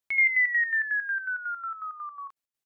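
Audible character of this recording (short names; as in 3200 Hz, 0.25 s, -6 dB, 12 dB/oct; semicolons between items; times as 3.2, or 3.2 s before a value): chopped level 5.5 Hz, depth 65%, duty 50%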